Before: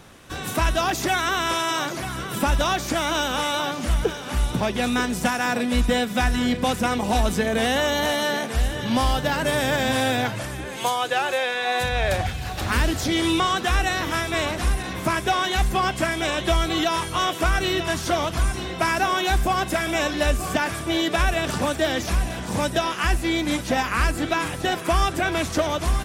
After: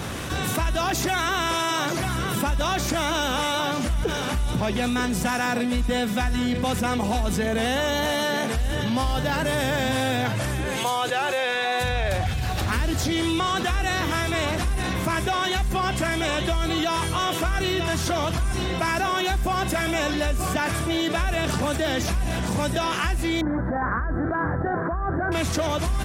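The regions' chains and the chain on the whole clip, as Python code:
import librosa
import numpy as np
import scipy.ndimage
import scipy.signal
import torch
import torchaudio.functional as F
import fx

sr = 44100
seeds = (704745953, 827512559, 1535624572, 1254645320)

y = fx.chain(x, sr, fx.ellip_lowpass(hz=1700.0, order=4, stop_db=40),
    fx.over_compress(threshold_db=-26.0, ratio=-1.0), at=(23.41, 25.32))
y = scipy.signal.sosfilt(scipy.signal.butter(2, 60.0, 'highpass', fs=sr, output='sos'), y)
y = fx.low_shelf(y, sr, hz=110.0, db=9.0)
y = fx.env_flatten(y, sr, amount_pct=70)
y = y * 10.0 ** (-7.5 / 20.0)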